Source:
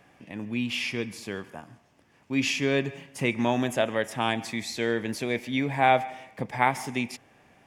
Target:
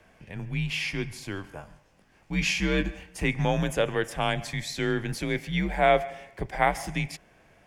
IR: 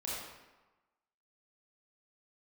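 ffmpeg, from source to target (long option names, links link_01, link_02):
-filter_complex "[0:a]afreqshift=-90,asettb=1/sr,asplit=3[link_01][link_02][link_03];[link_01]atrim=end=1.424[link_04];[link_02]atrim=start=1.42:end=3.04,asetpts=PTS-STARTPTS,afade=type=in:duration=0.004:curve=qsin,afade=type=out:start_time=1.616:duration=0.004:curve=qsin,asplit=2[link_05][link_06];[link_06]adelay=20,volume=-6.5dB[link_07];[link_05][link_07]amix=inputs=2:normalize=0,atrim=end_sample=71442[link_08];[link_03]atrim=start=3.036[link_09];[link_04][link_08]acrossfade=duration=0.004:curve1=hsin:curve2=qsin[link_10];[link_10][link_09]acrossfade=duration=0.004:curve1=qsin:curve2=hsin"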